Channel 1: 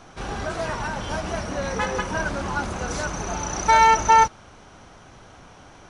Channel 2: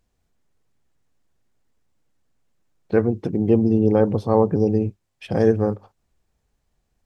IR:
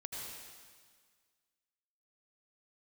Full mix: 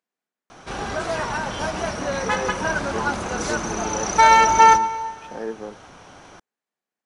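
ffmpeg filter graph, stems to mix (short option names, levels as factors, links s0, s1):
-filter_complex "[0:a]adelay=500,volume=1.26,asplit=2[s0][s1];[s1]volume=0.237[s2];[1:a]highpass=f=200:w=0.5412,highpass=f=200:w=1.3066,equalizer=f=1600:t=o:w=1.8:g=6.5,volume=0.224[s3];[2:a]atrim=start_sample=2205[s4];[s2][s4]afir=irnorm=-1:irlink=0[s5];[s0][s3][s5]amix=inputs=3:normalize=0,lowshelf=f=120:g=-9"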